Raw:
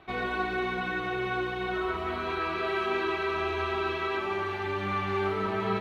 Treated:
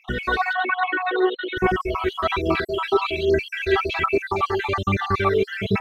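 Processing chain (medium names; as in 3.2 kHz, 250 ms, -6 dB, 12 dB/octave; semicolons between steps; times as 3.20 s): random holes in the spectrogram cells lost 57%; in parallel at -2 dB: gain riding; on the sum: phaser 1.2 Hz, delay 2.6 ms, feedback 58%; 0.53–1.57 s: brick-wall FIR band-pass 250–4300 Hz; trim +5 dB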